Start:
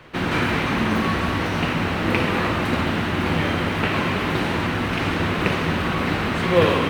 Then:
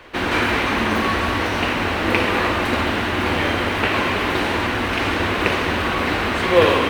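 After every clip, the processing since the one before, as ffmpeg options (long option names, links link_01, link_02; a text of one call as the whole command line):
ffmpeg -i in.wav -af "equalizer=frequency=150:width_type=o:width=0.86:gain=-14.5,bandreject=frequency=1300:width=29,volume=4dB" out.wav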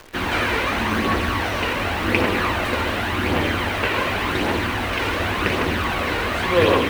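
ffmpeg -i in.wav -af "aphaser=in_gain=1:out_gain=1:delay=2.2:decay=0.38:speed=0.89:type=triangular,acrusher=bits=7:dc=4:mix=0:aa=0.000001,volume=-2.5dB" out.wav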